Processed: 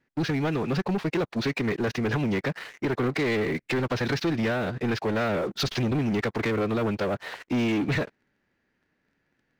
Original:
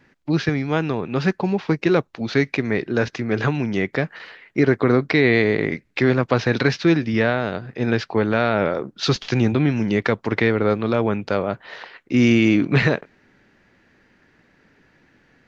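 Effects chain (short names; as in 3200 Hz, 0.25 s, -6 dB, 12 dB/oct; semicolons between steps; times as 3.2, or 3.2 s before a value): compressor 2.5:1, threshold -21 dBFS, peak gain reduction 7 dB; time stretch by phase-locked vocoder 0.62×; sample leveller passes 3; gain -9 dB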